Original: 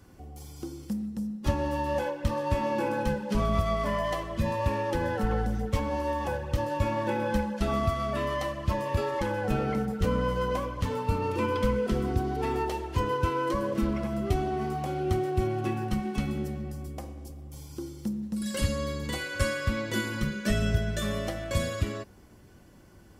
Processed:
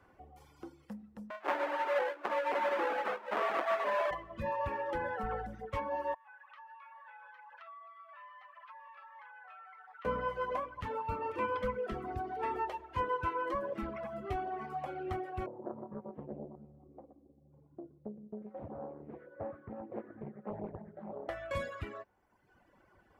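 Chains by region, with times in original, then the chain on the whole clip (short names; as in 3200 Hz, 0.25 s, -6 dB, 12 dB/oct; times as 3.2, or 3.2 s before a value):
1.3–4.11 half-waves squared off + HPF 310 Hz 24 dB/oct + high shelf 5600 Hz -10 dB
6.14–10.05 inverse Chebyshev high-pass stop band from 360 Hz, stop band 50 dB + air absorption 290 m + compressor 16:1, threshold -45 dBFS
15.46–21.29 Butterworth band-pass 240 Hz, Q 0.67 + echo 0.122 s -7.5 dB + Doppler distortion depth 0.87 ms
whole clip: reverb removal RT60 1.2 s; three-band isolator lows -14 dB, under 500 Hz, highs -20 dB, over 2400 Hz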